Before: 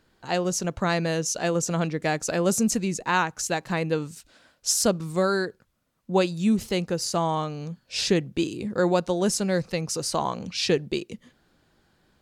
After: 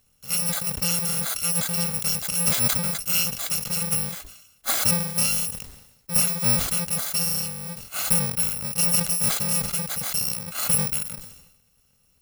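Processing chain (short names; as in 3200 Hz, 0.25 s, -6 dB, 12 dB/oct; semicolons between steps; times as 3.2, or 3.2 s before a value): FFT order left unsorted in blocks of 128 samples; sustainer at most 63 dB/s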